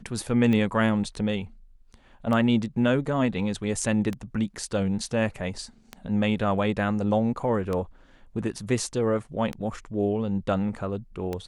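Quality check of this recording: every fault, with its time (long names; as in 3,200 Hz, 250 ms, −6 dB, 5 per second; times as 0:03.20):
scratch tick 33 1/3 rpm −17 dBFS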